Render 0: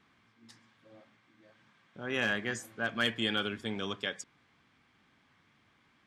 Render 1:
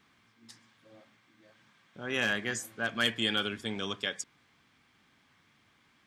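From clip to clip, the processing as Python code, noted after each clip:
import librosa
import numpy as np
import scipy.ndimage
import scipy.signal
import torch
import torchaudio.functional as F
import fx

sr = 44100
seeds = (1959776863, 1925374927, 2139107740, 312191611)

y = fx.high_shelf(x, sr, hz=4100.0, db=8.0)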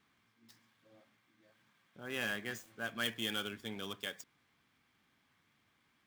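y = fx.dead_time(x, sr, dead_ms=0.051)
y = F.gain(torch.from_numpy(y), -7.5).numpy()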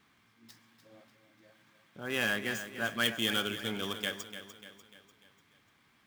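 y = fx.echo_feedback(x, sr, ms=296, feedback_pct=49, wet_db=-11.0)
y = F.gain(torch.from_numpy(y), 6.5).numpy()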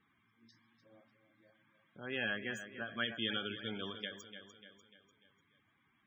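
y = fx.spec_topn(x, sr, count=64)
y = fx.end_taper(y, sr, db_per_s=130.0)
y = F.gain(torch.from_numpy(y), -5.5).numpy()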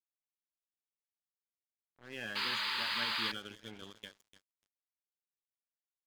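y = fx.spec_paint(x, sr, seeds[0], shape='noise', start_s=2.35, length_s=0.97, low_hz=840.0, high_hz=5000.0, level_db=-31.0)
y = np.sign(y) * np.maximum(np.abs(y) - 10.0 ** (-46.0 / 20.0), 0.0)
y = F.gain(torch.from_numpy(y), -3.5).numpy()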